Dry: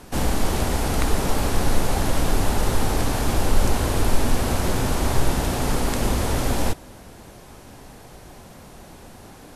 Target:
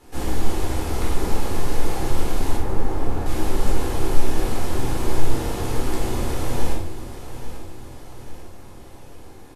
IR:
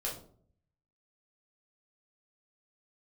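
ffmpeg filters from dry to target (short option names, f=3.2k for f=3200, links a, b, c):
-filter_complex "[0:a]asettb=1/sr,asplit=3[a][b][c];[a]atrim=end=2.564[d];[b]atrim=start=2.56:end=3.26,asetpts=PTS-STARTPTS,afade=t=in:d=0.004:c=qsin,afade=t=out:st=0.696:d=0.004:c=qsin,lowpass=1.5k[e];[c]atrim=start=3.256[f];[d][e]acrossfade=d=0.004:c1=hsin:c2=qsin[g];[g][f]acrossfade=d=0.004:c1=qsin:c2=hsin,aecho=1:1:841|1682|2523|3364|4205:0.251|0.131|0.0679|0.0353|0.0184[h];[1:a]atrim=start_sample=2205,atrim=end_sample=6174,asetrate=29988,aresample=44100[i];[h][i]afir=irnorm=-1:irlink=0,volume=-9.5dB"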